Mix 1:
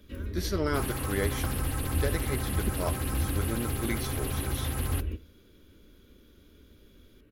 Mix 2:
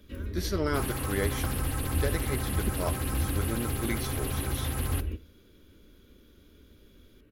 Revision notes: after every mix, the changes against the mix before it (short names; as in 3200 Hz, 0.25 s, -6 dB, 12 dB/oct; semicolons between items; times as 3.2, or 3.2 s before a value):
second sound: send +6.5 dB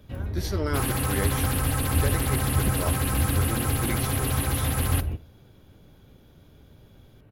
first sound: remove fixed phaser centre 320 Hz, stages 4; second sound +7.0 dB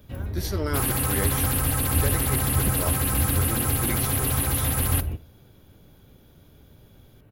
master: add high shelf 11000 Hz +11 dB